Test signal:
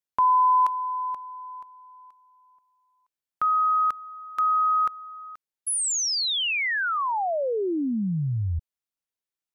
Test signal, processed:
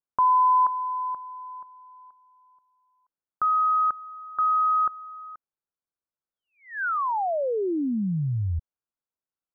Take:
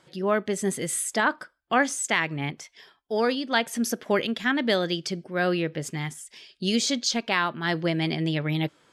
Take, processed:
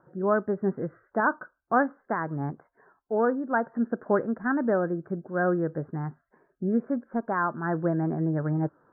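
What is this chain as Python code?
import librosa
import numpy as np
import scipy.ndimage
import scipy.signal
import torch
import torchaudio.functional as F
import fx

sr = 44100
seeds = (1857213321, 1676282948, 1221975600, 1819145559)

y = scipy.signal.sosfilt(scipy.signal.butter(12, 1600.0, 'lowpass', fs=sr, output='sos'), x)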